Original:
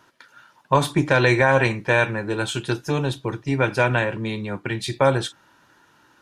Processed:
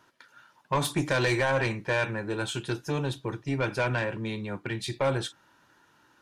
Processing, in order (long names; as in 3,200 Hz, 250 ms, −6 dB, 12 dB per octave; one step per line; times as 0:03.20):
0:00.84–0:01.49: high-shelf EQ 3,800 Hz → 7,100 Hz +11 dB
soft clipping −13 dBFS, distortion −12 dB
level −5.5 dB